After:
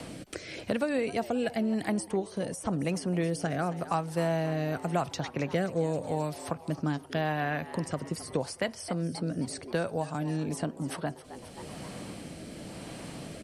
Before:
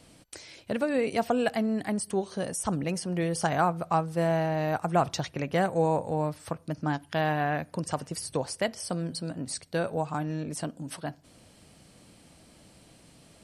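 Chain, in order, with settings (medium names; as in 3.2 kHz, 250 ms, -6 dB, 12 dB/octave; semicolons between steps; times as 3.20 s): rotary cabinet horn 0.9 Hz; frequency-shifting echo 265 ms, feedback 48%, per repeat +110 Hz, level -18 dB; three bands compressed up and down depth 70%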